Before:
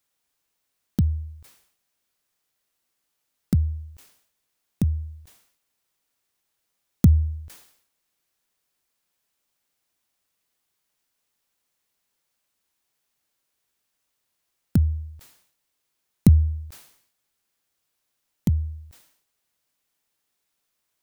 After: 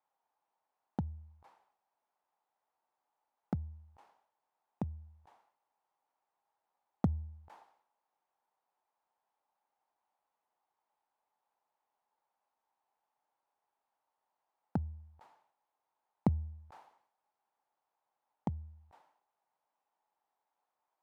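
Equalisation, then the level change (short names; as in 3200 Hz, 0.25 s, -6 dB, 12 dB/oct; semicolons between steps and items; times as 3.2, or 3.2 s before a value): band-pass 850 Hz, Q 4.9; tilt -1.5 dB/oct; +9.5 dB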